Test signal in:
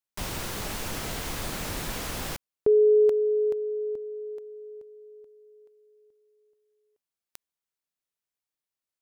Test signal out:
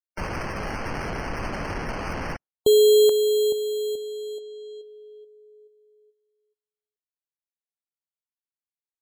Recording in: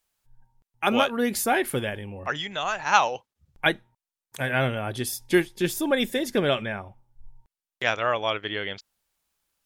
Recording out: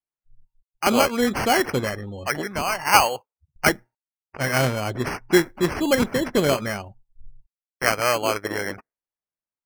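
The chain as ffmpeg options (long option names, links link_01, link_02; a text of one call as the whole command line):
ffmpeg -i in.wav -af "acrusher=samples=12:mix=1:aa=0.000001,afftdn=noise_reduction=29:noise_floor=-45,volume=3.5dB" out.wav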